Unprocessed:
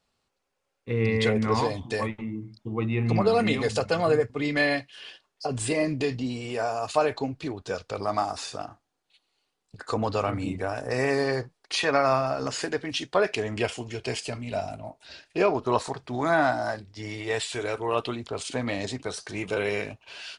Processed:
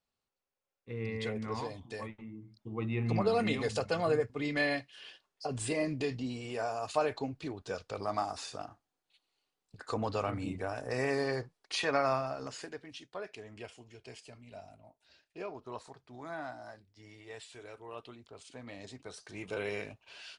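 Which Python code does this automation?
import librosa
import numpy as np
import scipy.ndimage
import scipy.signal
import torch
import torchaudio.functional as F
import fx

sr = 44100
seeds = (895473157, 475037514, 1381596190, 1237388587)

y = fx.gain(x, sr, db=fx.line((2.36, -13.0), (2.9, -7.0), (12.05, -7.0), (13.06, -19.0), (18.53, -19.0), (19.61, -9.0)))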